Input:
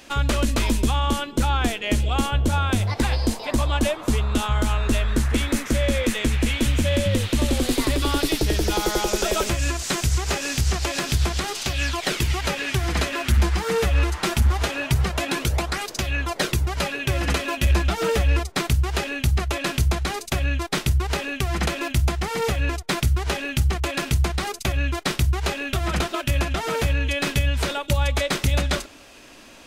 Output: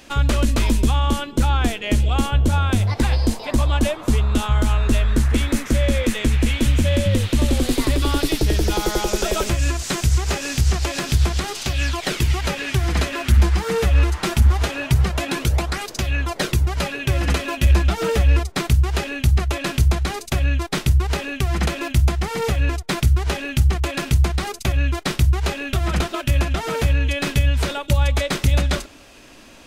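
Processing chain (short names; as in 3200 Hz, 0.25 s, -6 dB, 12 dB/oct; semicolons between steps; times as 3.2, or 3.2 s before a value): low shelf 230 Hz +5 dB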